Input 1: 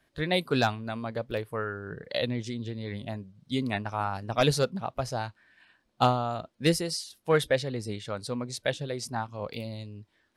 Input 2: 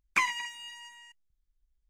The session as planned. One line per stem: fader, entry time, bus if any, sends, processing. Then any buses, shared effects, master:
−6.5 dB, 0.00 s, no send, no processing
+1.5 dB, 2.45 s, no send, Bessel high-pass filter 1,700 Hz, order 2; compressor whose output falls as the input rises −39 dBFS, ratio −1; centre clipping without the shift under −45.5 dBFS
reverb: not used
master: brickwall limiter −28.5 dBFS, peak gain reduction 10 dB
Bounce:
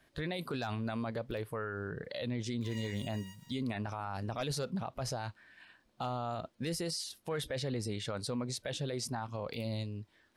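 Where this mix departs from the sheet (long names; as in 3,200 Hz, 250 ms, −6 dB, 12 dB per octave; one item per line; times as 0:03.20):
stem 1 −6.5 dB → +2.0 dB
stem 2 +1.5 dB → −9.0 dB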